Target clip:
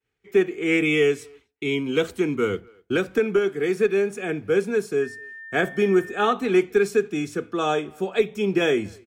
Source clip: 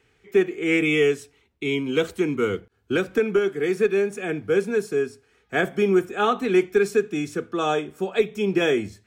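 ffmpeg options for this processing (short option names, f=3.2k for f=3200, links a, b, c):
-filter_complex "[0:a]agate=range=-33dB:threshold=-52dB:ratio=3:detection=peak,asplit=2[a][b];[b]adelay=250,highpass=300,lowpass=3.4k,asoftclip=type=hard:threshold=-17dB,volume=-27dB[c];[a][c]amix=inputs=2:normalize=0,asettb=1/sr,asplit=3[d][e][f];[d]atrim=end=5.024[g];[e]atrim=start=5.02:end=6.33,asetpts=PTS-STARTPTS,afade=t=in:d=0.004:c=qsin,afade=t=out:st=1.306:d=0.004:c=qsin,aeval=exprs='val(0)+0.0141*sin(2*PI*1800*n/s)':c=same[h];[f]atrim=start=6.326[i];[g][h]acrossfade=d=0.004:c1=hsin:c2=qsin[j];[j][i]acrossfade=d=0.004:c1=qsin:c2=hsin"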